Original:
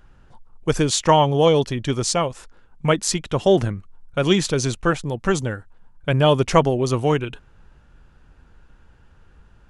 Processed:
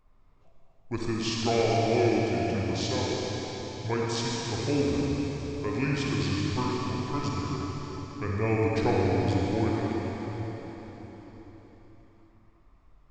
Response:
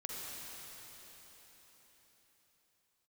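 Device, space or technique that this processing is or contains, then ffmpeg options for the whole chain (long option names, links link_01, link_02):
slowed and reverbed: -filter_complex "[0:a]asetrate=32634,aresample=44100[link_01];[1:a]atrim=start_sample=2205[link_02];[link_01][link_02]afir=irnorm=-1:irlink=0,volume=-8.5dB"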